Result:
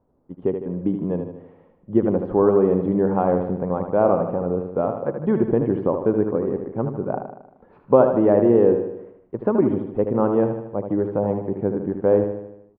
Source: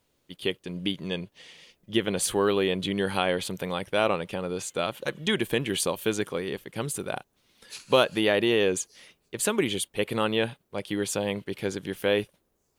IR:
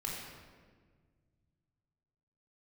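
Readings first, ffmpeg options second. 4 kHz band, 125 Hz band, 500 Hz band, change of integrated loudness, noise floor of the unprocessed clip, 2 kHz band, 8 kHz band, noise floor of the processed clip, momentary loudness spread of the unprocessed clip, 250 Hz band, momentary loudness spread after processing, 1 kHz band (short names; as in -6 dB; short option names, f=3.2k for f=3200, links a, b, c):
under -30 dB, +8.5 dB, +8.0 dB, +6.5 dB, -73 dBFS, -11.0 dB, under -40 dB, -56 dBFS, 11 LU, +9.0 dB, 11 LU, +5.5 dB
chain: -filter_complex "[0:a]lowpass=f=1k:w=0.5412,lowpass=f=1k:w=1.3066,equalizer=f=250:w=5:g=3.5,asplit=2[a][b];[b]aecho=0:1:77|154|231|308|385|462|539:0.447|0.241|0.13|0.0703|0.038|0.0205|0.0111[c];[a][c]amix=inputs=2:normalize=0,volume=7dB"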